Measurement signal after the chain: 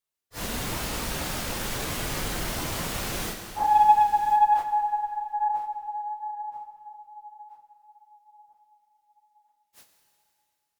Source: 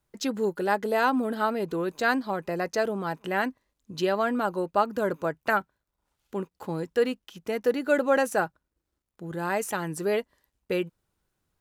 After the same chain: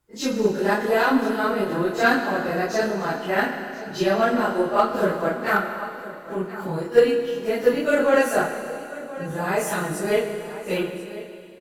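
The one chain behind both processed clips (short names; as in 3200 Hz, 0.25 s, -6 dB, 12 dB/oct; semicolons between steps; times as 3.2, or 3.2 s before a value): phase scrambler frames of 0.1 s; echo 1.032 s -16 dB; dynamic EQ 890 Hz, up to -4 dB, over -35 dBFS, Q 3.2; added harmonics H 3 -22 dB, 8 -37 dB, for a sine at -10.5 dBFS; Schroeder reverb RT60 2.6 s, combs from 26 ms, DRR 6 dB; gain +6.5 dB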